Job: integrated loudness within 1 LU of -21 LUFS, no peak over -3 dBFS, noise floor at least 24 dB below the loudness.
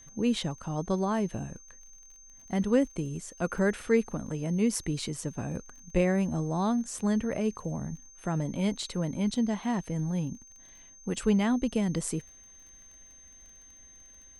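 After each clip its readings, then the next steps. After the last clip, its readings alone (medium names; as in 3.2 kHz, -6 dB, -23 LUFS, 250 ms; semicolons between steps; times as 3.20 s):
tick rate 25 per s; steady tone 6.3 kHz; tone level -51 dBFS; loudness -30.0 LUFS; peak level -12.5 dBFS; loudness target -21.0 LUFS
-> de-click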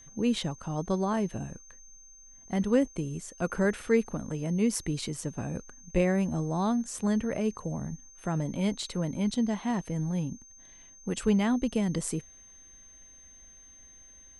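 tick rate 0 per s; steady tone 6.3 kHz; tone level -51 dBFS
-> band-stop 6.3 kHz, Q 30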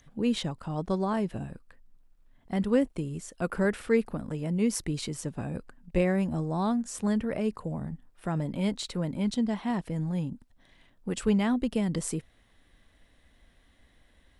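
steady tone not found; loudness -30.0 LUFS; peak level -12.5 dBFS; loudness target -21.0 LUFS
-> trim +9 dB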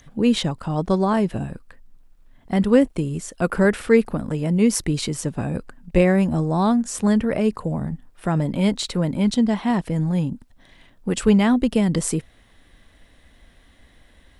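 loudness -21.0 LUFS; peak level -3.5 dBFS; noise floor -55 dBFS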